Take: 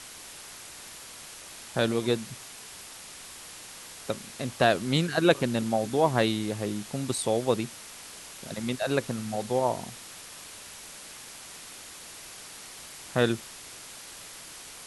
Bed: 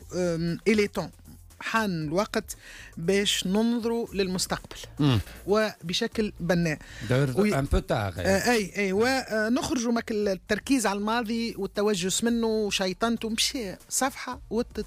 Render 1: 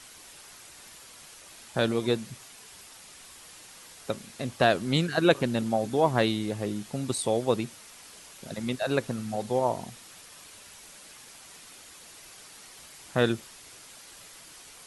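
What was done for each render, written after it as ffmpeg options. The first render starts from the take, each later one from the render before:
-af "afftdn=nr=6:nf=-45"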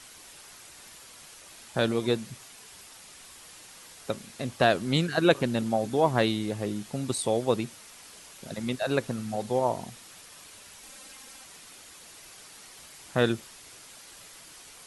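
-filter_complex "[0:a]asettb=1/sr,asplit=3[s0][s1][s2];[s0]atrim=end=10.834[s3];[s1]atrim=start=10.83:end=11.44,asetpts=PTS-STARTPTS,afade=t=in:d=0.004:c=qsin,afade=t=out:st=0.606:d=0.004:c=qsin,aecho=1:1:3.8:0.65,atrim=end_sample=26901[s4];[s2]atrim=start=11.436[s5];[s3][s4]acrossfade=d=0.004:c1=hsin:c2=qsin[s6];[s6][s5]acrossfade=d=0.004:c1=qsin:c2=hsin"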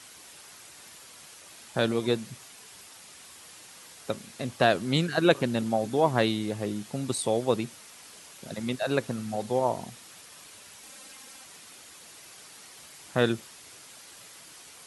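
-af "highpass=76"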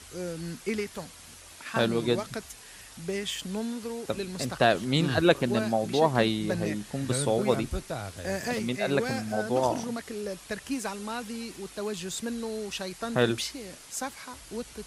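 -filter_complex "[1:a]volume=0.376[s0];[0:a][s0]amix=inputs=2:normalize=0"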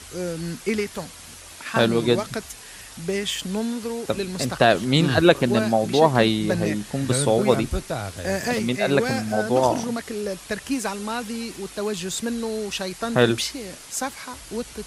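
-af "volume=2.11,alimiter=limit=0.794:level=0:latency=1"

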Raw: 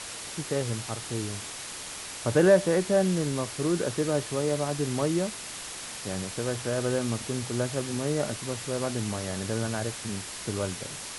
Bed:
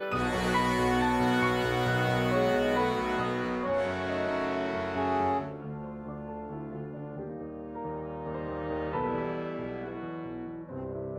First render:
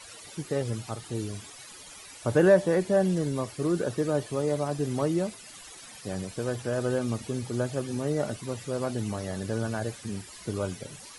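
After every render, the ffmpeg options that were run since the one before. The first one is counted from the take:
-af "afftdn=nr=14:nf=-39"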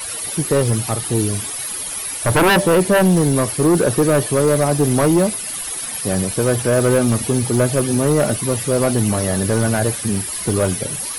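-af "aeval=exprs='0.335*sin(PI/2*3.55*val(0)/0.335)':c=same,aexciter=amount=4.2:drive=6.9:freq=9600"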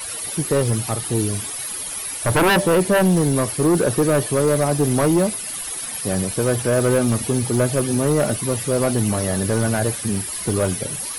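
-af "volume=0.75"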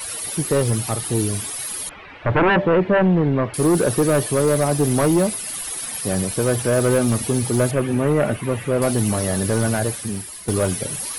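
-filter_complex "[0:a]asettb=1/sr,asplit=3[s0][s1][s2];[s0]atrim=end=1.894[s3];[s1]atrim=start=1.89:end=3.54,asetpts=PTS-STARTPTS,afade=t=in:d=0.004:c=qsin,afade=t=out:st=1.646:d=0.004:c=qsin,lowpass=f=2600:w=0.5412,lowpass=f=2600:w=1.3066[s4];[s2]atrim=start=3.536[s5];[s3][s4]acrossfade=d=0.004:c1=hsin:c2=qsin[s6];[s6][s5]acrossfade=d=0.004:c1=qsin:c2=hsin,asettb=1/sr,asplit=3[s7][s8][s9];[s7]atrim=end=7.714[s10];[s8]atrim=start=7.71:end=8.82,asetpts=PTS-STARTPTS,afade=t=in:d=0.004:c=qsin,afade=t=out:st=1.106:d=0.004:c=qsin,highshelf=f=3400:t=q:w=1.5:g=-11.5[s11];[s9]atrim=start=8.816[s12];[s10][s11]acrossfade=d=0.004:c1=hsin:c2=qsin[s13];[s13][s12]acrossfade=d=0.004:c1=qsin:c2=hsin,asplit=2[s14][s15];[s14]atrim=end=10.48,asetpts=PTS-STARTPTS,afade=t=out:st=9.69:d=0.79:silence=0.298538[s16];[s15]atrim=start=10.48,asetpts=PTS-STARTPTS,afade=t=in:d=0.004:c=hsin:silence=0.298538[s17];[s16][s17]concat=n=2:v=0:a=1"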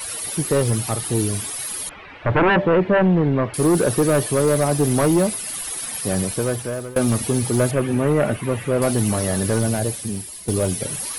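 -filter_complex "[0:a]asettb=1/sr,asplit=3[s0][s1][s2];[s0]atrim=end=9.594[s3];[s1]atrim=start=9.59:end=10.81,asetpts=PTS-STARTPTS,afade=t=in:d=0.004:c=qsin,afade=t=out:st=1.216:d=0.004:c=qsin,equalizer=f=1400:t=o:w=1.3:g=-7[s4];[s2]atrim=start=10.806[s5];[s3][s4]acrossfade=d=0.004:c1=hsin:c2=qsin[s6];[s6][s5]acrossfade=d=0.004:c1=qsin:c2=hsin,asplit=2[s7][s8];[s7]atrim=end=6.96,asetpts=PTS-STARTPTS,afade=t=out:st=6.27:d=0.69:silence=0.0707946[s9];[s8]atrim=start=6.96,asetpts=PTS-STARTPTS,afade=t=in:d=0.004:c=hsin:silence=0.0707946[s10];[s9][s10]concat=n=2:v=0:a=1"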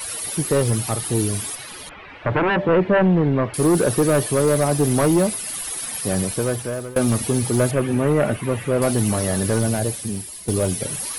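-filter_complex "[0:a]asettb=1/sr,asplit=3[s0][s1][s2];[s0]atrim=end=1.554[s3];[s1]atrim=start=1.55:end=2.69,asetpts=PTS-STARTPTS,afade=t=in:d=0.004:c=qsin,afade=t=out:st=1.136:d=0.004:c=qsin,acrossover=split=100|4800[s4][s5][s6];[s4]acompressor=threshold=0.0158:ratio=4[s7];[s5]acompressor=threshold=0.158:ratio=4[s8];[s6]acompressor=threshold=0.00891:ratio=4[s9];[s7][s8][s9]amix=inputs=3:normalize=0[s10];[s2]atrim=start=2.686[s11];[s3][s10]acrossfade=d=0.004:c1=hsin:c2=qsin[s12];[s12][s11]acrossfade=d=0.004:c1=qsin:c2=hsin"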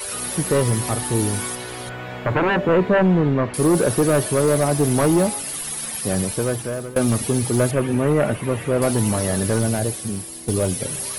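-filter_complex "[1:a]volume=0.501[s0];[0:a][s0]amix=inputs=2:normalize=0"

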